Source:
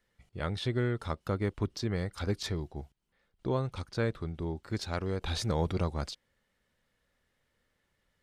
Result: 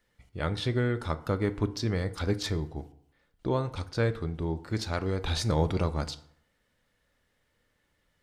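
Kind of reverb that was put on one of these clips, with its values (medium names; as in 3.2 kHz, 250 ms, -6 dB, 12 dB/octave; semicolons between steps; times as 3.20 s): FDN reverb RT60 0.66 s, low-frequency decay 0.95×, high-frequency decay 0.6×, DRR 10.5 dB; trim +3 dB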